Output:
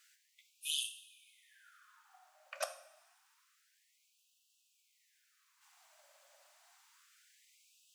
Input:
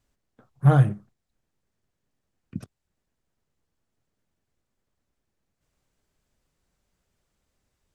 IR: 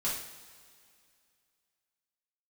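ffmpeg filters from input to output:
-filter_complex "[0:a]equalizer=f=470:t=o:w=0.5:g=15,asplit=2[a][b];[1:a]atrim=start_sample=2205,adelay=11[c];[b][c]afir=irnorm=-1:irlink=0,volume=-13dB[d];[a][d]amix=inputs=2:normalize=0,afftfilt=real='re*gte(b*sr/1024,530*pow(2600/530,0.5+0.5*sin(2*PI*0.28*pts/sr)))':imag='im*gte(b*sr/1024,530*pow(2600/530,0.5+0.5*sin(2*PI*0.28*pts/sr)))':win_size=1024:overlap=0.75,volume=13.5dB"

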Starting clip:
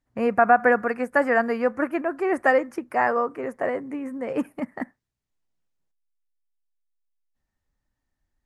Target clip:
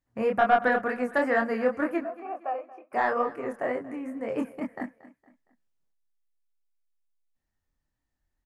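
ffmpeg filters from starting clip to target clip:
-filter_complex "[0:a]asettb=1/sr,asplit=3[a][b][c];[a]atrim=end=2.034[d];[b]atrim=start=2.03:end=2.93,asetpts=PTS-STARTPTS,afade=t=in:d=0.004:c=qsin,afade=t=out:st=0.896:d=0.004:c=qsin,asplit=3[e][f][g];[e]bandpass=f=730:t=q:w=8,volume=0dB[h];[f]bandpass=f=1.09k:t=q:w=8,volume=-6dB[i];[g]bandpass=f=2.44k:t=q:w=8,volume=-9dB[j];[h][i][j]amix=inputs=3:normalize=0[k];[c]atrim=start=2.926[l];[d][k]acrossfade=d=0.004:c1=hsin:c2=qsin[m];[m][l]acrossfade=d=0.004:c1=qsin:c2=hsin,asoftclip=type=tanh:threshold=-8dB,flanger=delay=22.5:depth=5.2:speed=2.1,aecho=1:1:231|462|693:0.126|0.0491|0.0191"

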